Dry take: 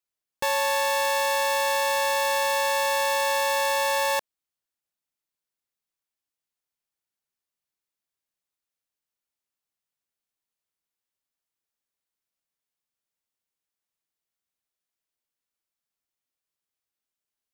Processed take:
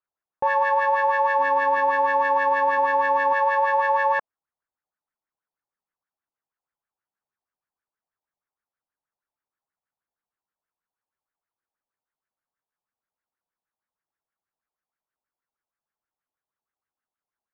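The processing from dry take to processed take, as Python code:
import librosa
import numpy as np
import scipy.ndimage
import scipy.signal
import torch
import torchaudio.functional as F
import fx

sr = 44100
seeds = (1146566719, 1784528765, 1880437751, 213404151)

y = fx.octave_divider(x, sr, octaves=1, level_db=-4.0, at=(1.38, 3.33))
y = fx.filter_lfo_lowpass(y, sr, shape='sine', hz=6.3, low_hz=780.0, high_hz=1700.0, q=3.8)
y = y * librosa.db_to_amplitude(-1.5)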